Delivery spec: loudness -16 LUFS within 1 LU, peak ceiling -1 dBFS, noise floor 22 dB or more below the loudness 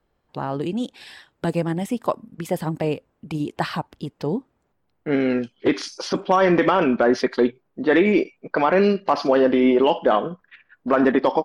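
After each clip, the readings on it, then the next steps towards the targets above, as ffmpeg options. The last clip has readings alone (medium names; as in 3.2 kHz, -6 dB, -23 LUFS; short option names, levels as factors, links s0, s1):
loudness -21.5 LUFS; peak level -7.0 dBFS; loudness target -16.0 LUFS
-> -af "volume=1.88"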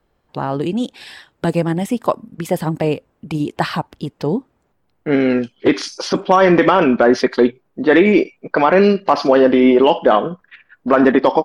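loudness -16.0 LUFS; peak level -1.5 dBFS; noise floor -65 dBFS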